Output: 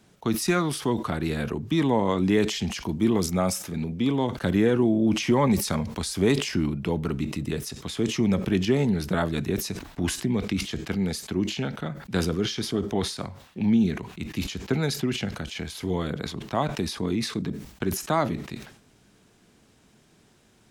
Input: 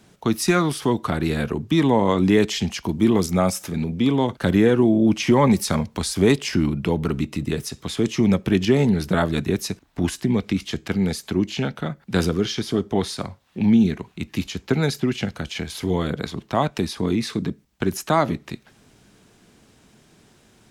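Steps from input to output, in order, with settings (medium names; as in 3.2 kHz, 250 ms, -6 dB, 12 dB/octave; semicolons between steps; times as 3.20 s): decay stretcher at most 94 dB/s; trim -5 dB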